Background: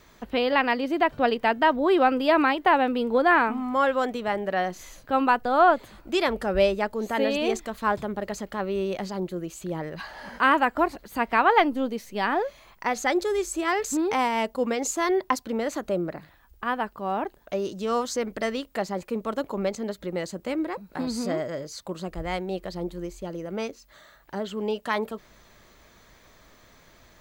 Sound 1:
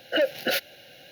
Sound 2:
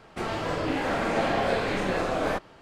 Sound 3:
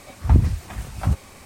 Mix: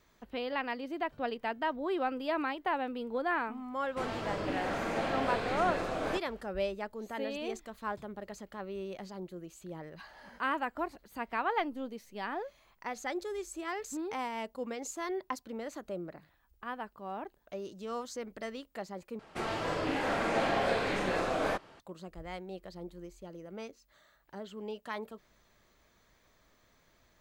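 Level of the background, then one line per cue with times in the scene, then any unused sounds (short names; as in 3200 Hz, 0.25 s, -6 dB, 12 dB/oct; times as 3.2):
background -12.5 dB
3.8 add 2 -7.5 dB
19.19 replace with 2 -3.5 dB + low shelf 240 Hz -4.5 dB
not used: 1, 3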